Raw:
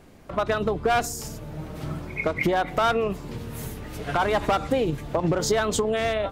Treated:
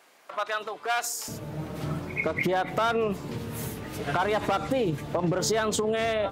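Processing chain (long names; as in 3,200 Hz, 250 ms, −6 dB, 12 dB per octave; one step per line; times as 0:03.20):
brickwall limiter −17 dBFS, peak gain reduction 4.5 dB
high-pass filter 860 Hz 12 dB per octave, from 0:01.28 99 Hz
downward compressor, threshold −23 dBFS, peak gain reduction 3.5 dB
level +1.5 dB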